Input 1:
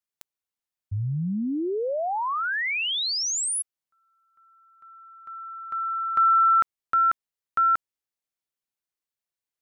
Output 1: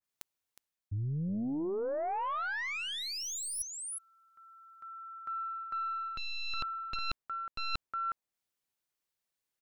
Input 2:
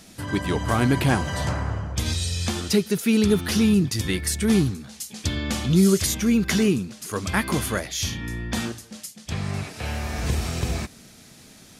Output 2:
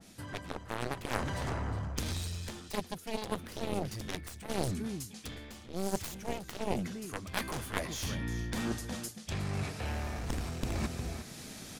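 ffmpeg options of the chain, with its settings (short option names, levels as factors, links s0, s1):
-af "aecho=1:1:363:0.188,aeval=exprs='0.562*(cos(1*acos(clip(val(0)/0.562,-1,1)))-cos(1*PI/2))+0.0794*(cos(5*acos(clip(val(0)/0.562,-1,1)))-cos(5*PI/2))+0.251*(cos(6*acos(clip(val(0)/0.562,-1,1)))-cos(6*PI/2))+0.224*(cos(7*acos(clip(val(0)/0.562,-1,1)))-cos(7*PI/2))+0.126*(cos(8*acos(clip(val(0)/0.562,-1,1)))-cos(8*PI/2))':c=same,areverse,acompressor=threshold=0.02:ratio=12:attack=71:release=637:knee=1:detection=rms,areverse,adynamicequalizer=threshold=0.00251:dfrequency=1800:dqfactor=0.7:tfrequency=1800:tqfactor=0.7:attack=5:release=100:ratio=0.375:range=2.5:mode=cutabove:tftype=highshelf,volume=1.26"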